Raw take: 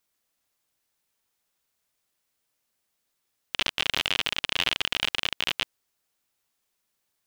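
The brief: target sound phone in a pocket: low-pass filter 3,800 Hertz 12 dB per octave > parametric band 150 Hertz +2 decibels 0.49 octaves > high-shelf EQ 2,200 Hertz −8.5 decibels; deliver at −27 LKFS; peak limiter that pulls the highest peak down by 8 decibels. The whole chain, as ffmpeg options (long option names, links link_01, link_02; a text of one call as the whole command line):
ffmpeg -i in.wav -af "alimiter=limit=-12dB:level=0:latency=1,lowpass=3800,equalizer=frequency=150:width_type=o:width=0.49:gain=2,highshelf=frequency=2200:gain=-8.5,volume=10dB" out.wav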